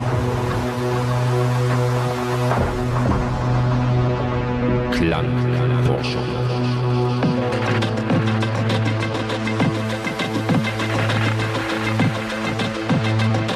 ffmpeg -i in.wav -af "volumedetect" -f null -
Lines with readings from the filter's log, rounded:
mean_volume: -19.5 dB
max_volume: -4.9 dB